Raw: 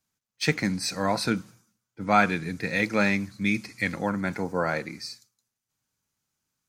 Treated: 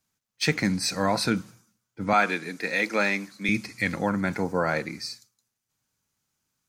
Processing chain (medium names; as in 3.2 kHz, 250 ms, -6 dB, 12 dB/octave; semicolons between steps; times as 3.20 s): 2.13–3.49 s: Bessel high-pass 320 Hz, order 4; in parallel at 0 dB: peak limiter -17.5 dBFS, peak gain reduction 9.5 dB; on the sum: trim -3.5 dB